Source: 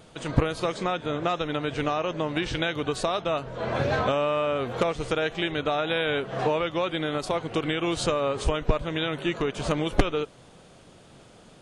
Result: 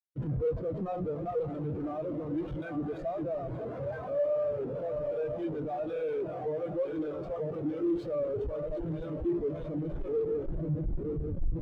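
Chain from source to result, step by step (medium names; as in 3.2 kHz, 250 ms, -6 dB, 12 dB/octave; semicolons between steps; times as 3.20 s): backward echo that repeats 466 ms, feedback 66%, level -7 dB; Schmitt trigger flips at -36.5 dBFS; spectral contrast expander 2.5:1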